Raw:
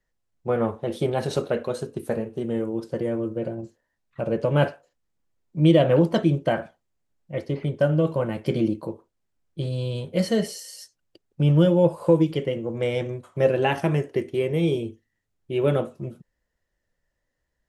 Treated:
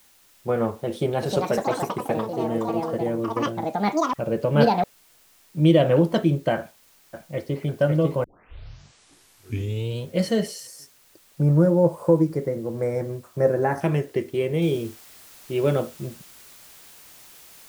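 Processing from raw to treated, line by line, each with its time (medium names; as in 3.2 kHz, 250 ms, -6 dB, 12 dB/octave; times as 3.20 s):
0.87–5.98 s: ever faster or slower copies 355 ms, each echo +6 st, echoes 2
6.58–7.60 s: echo throw 550 ms, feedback 50%, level -4 dB
8.24 s: tape start 1.77 s
10.67–13.81 s: Butterworth band-stop 3.1 kHz, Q 0.89
14.62 s: noise floor step -57 dB -48 dB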